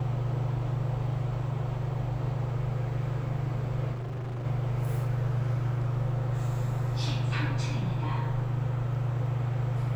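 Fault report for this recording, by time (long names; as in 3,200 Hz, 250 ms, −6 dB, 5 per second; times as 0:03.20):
0:03.92–0:04.46: clipping −32 dBFS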